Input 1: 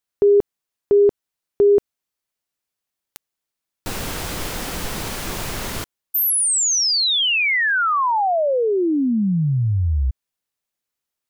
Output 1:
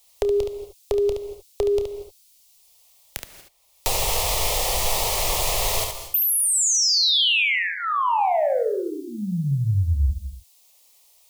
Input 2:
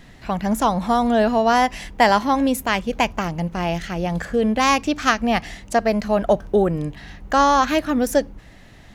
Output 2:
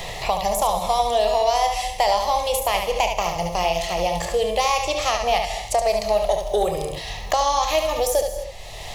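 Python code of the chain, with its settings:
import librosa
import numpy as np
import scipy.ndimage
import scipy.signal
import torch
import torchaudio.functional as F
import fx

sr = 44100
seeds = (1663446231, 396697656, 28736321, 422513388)

p1 = fx.peak_eq(x, sr, hz=210.0, db=-15.0, octaves=2.1)
p2 = fx.over_compress(p1, sr, threshold_db=-22.0, ratio=-0.5)
p3 = p1 + (p2 * librosa.db_to_amplitude(-2.5))
p4 = fx.fixed_phaser(p3, sr, hz=630.0, stages=4)
p5 = 10.0 ** (-7.5 / 20.0) * np.tanh(p4 / 10.0 ** (-7.5 / 20.0))
p6 = p5 + fx.room_early_taps(p5, sr, ms=(29, 71), db=(-11.0, -6.0), dry=0)
p7 = fx.rev_gated(p6, sr, seeds[0], gate_ms=260, shape='flat', drr_db=11.0)
y = fx.band_squash(p7, sr, depth_pct=70)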